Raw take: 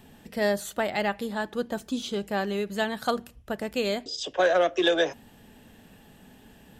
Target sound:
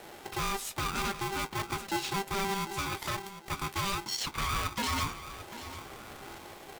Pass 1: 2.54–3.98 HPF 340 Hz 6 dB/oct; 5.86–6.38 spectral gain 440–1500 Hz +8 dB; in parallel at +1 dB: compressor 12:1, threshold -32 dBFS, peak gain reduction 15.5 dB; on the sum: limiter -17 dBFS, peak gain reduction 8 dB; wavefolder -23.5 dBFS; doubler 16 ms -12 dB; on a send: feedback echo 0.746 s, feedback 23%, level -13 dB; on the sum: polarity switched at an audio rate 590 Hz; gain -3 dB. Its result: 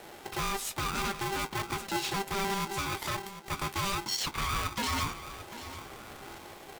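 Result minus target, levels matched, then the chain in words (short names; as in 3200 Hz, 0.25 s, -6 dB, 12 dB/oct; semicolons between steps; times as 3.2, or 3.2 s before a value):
compressor: peak gain reduction -8 dB
2.54–3.98 HPF 340 Hz 6 dB/oct; 5.86–6.38 spectral gain 440–1500 Hz +8 dB; in parallel at +1 dB: compressor 12:1, threshold -41 dBFS, peak gain reduction 23.5 dB; on the sum: limiter -17 dBFS, peak gain reduction 6.5 dB; wavefolder -23.5 dBFS; doubler 16 ms -12 dB; on a send: feedback echo 0.746 s, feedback 23%, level -13 dB; on the sum: polarity switched at an audio rate 590 Hz; gain -3 dB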